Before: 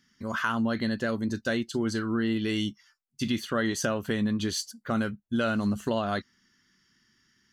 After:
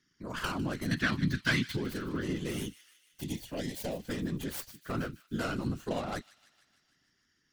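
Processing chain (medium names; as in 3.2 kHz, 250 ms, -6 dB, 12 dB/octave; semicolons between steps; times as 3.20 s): tracing distortion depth 0.44 ms; 3.21–4.09 s: static phaser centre 340 Hz, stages 6; whisper effect; 0.91–1.77 s: ten-band graphic EQ 125 Hz +10 dB, 250 Hz +6 dB, 500 Hz -11 dB, 1 kHz +4 dB, 2 kHz +12 dB, 4 kHz +10 dB; feedback echo behind a high-pass 152 ms, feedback 64%, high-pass 2.3 kHz, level -15.5 dB; trim -7 dB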